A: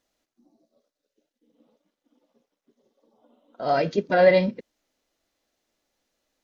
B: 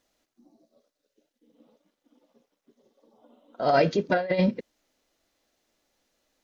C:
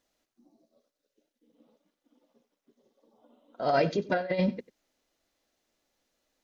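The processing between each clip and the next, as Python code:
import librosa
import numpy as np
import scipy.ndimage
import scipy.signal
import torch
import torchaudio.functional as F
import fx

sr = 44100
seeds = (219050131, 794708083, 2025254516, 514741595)

y1 = fx.over_compress(x, sr, threshold_db=-21.0, ratio=-0.5)
y2 = y1 + 10.0 ** (-19.0 / 20.0) * np.pad(y1, (int(94 * sr / 1000.0), 0))[:len(y1)]
y2 = y2 * 10.0 ** (-4.0 / 20.0)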